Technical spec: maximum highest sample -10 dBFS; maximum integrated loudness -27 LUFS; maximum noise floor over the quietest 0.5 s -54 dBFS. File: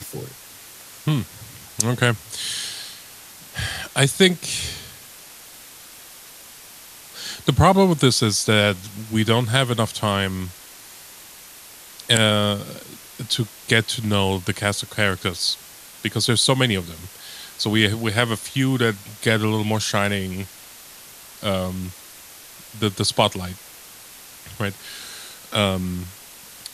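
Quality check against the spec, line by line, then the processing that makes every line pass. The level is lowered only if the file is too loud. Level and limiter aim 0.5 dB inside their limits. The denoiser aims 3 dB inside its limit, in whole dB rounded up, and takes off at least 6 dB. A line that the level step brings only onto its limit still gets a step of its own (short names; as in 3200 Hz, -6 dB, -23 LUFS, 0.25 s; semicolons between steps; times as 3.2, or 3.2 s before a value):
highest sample -1.5 dBFS: fail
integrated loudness -21.0 LUFS: fail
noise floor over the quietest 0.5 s -43 dBFS: fail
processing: denoiser 8 dB, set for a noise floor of -43 dBFS; gain -6.5 dB; limiter -10.5 dBFS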